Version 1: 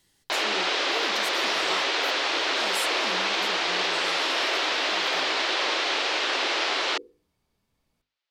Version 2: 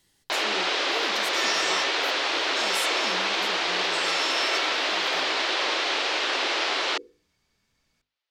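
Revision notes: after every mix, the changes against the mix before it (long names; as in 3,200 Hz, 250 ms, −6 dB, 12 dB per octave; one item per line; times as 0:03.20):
second sound: add flat-topped bell 3,200 Hz +10 dB 2.7 octaves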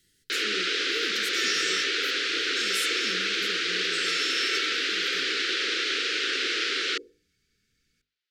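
master: add elliptic band-stop filter 460–1,400 Hz, stop band 50 dB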